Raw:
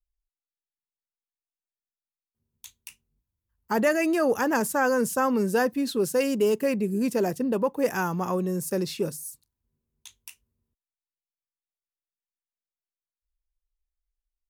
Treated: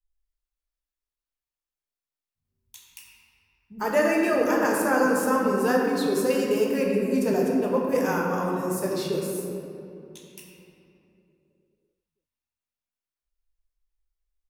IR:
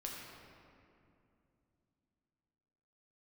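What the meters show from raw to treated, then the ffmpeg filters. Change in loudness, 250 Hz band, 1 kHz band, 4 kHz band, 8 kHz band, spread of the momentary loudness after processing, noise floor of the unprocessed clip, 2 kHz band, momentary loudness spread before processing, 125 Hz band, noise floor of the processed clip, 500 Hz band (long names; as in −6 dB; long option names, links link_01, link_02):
+1.5 dB, +1.5 dB, +1.5 dB, +0.5 dB, −1.0 dB, 10 LU, below −85 dBFS, +1.5 dB, 6 LU, −0.5 dB, below −85 dBFS, +2.0 dB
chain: -filter_complex "[0:a]acrossover=split=190[link_01][link_02];[link_02]adelay=100[link_03];[link_01][link_03]amix=inputs=2:normalize=0[link_04];[1:a]atrim=start_sample=2205[link_05];[link_04][link_05]afir=irnorm=-1:irlink=0,volume=2.5dB"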